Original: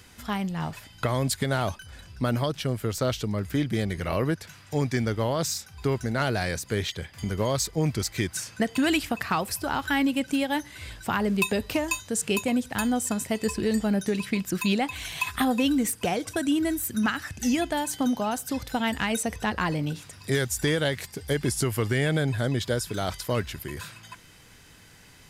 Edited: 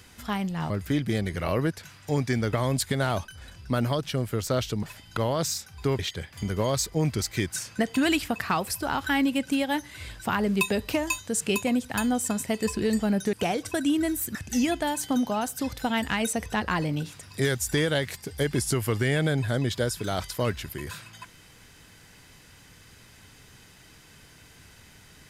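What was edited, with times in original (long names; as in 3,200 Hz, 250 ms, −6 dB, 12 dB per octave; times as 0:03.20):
0:00.70–0:01.04: swap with 0:03.34–0:05.17
0:05.99–0:06.80: remove
0:14.14–0:15.95: remove
0:16.97–0:17.25: remove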